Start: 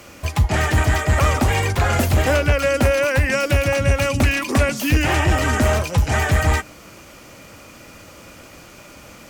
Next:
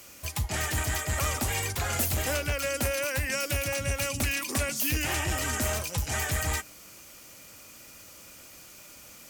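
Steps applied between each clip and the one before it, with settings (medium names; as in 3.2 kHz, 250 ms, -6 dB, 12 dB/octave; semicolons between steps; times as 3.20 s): pre-emphasis filter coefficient 0.8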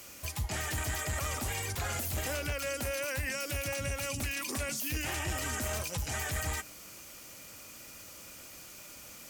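peak limiter -26 dBFS, peak gain reduction 11.5 dB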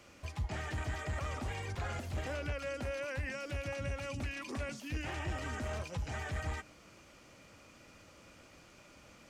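tape spacing loss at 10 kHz 21 dB; trim -1.5 dB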